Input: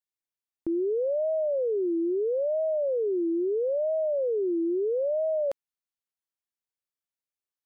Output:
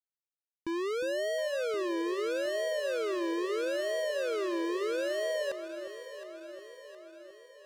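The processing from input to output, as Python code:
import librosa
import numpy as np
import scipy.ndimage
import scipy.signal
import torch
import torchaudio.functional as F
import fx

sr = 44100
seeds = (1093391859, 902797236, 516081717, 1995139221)

p1 = fx.leveller(x, sr, passes=5)
p2 = p1 + fx.echo_alternate(p1, sr, ms=358, hz=830.0, feedback_pct=75, wet_db=-8.5, dry=0)
y = F.gain(torch.from_numpy(p2), -8.0).numpy()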